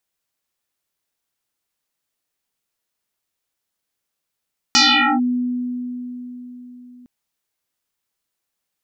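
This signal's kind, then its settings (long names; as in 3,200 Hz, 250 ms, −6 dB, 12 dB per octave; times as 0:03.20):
two-operator FM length 2.31 s, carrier 247 Hz, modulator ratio 2.2, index 11, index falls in 0.45 s linear, decay 4.31 s, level −9 dB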